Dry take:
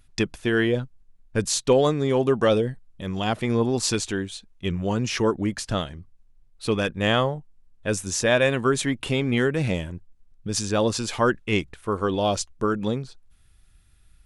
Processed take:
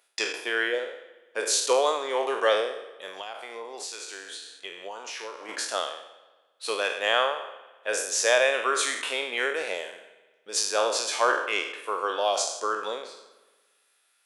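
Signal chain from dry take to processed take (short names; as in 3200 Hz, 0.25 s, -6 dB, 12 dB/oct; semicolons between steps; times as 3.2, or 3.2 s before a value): spectral trails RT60 0.70 s; HPF 500 Hz 24 dB/oct; spring tank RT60 1.4 s, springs 56 ms, chirp 30 ms, DRR 14.5 dB; 3.07–5.49 compressor 6:1, threshold -34 dBFS, peak gain reduction 13.5 dB; gain -1.5 dB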